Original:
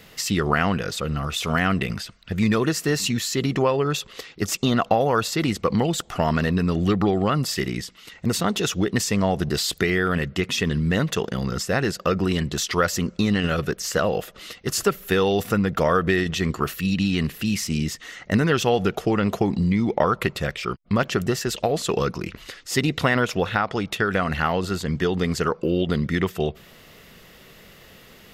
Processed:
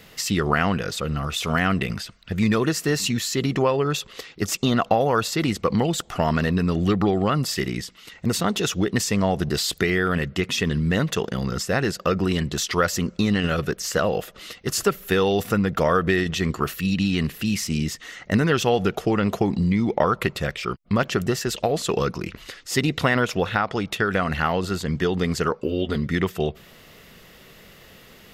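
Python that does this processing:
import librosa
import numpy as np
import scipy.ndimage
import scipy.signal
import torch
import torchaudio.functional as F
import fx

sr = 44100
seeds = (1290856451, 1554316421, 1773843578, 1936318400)

y = fx.notch_comb(x, sr, f0_hz=170.0, at=(25.52, 26.11))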